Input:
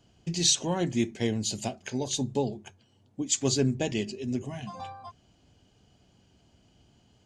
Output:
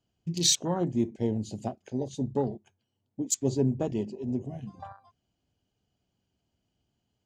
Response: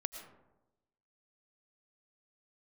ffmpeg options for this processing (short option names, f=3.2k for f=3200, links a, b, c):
-af "afwtdn=0.0224"